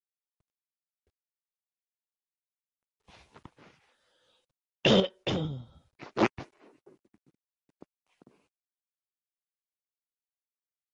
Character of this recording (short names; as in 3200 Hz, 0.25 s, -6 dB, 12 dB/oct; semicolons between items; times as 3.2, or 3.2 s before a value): a quantiser's noise floor 12-bit, dither none; chopped level 0.65 Hz, depth 60%, duty 25%; MP3